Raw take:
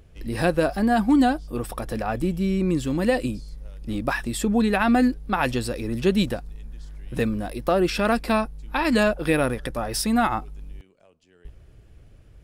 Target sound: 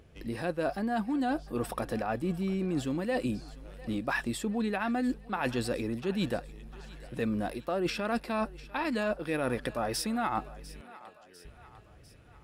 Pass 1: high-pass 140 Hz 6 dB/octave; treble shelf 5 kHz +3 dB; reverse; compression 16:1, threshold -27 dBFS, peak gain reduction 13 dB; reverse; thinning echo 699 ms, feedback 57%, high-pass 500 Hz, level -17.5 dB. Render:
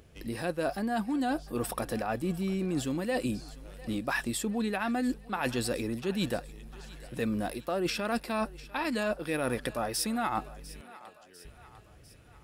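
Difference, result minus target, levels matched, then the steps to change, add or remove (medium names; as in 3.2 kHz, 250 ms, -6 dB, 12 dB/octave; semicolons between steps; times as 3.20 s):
8 kHz band +5.0 dB
change: treble shelf 5 kHz -6 dB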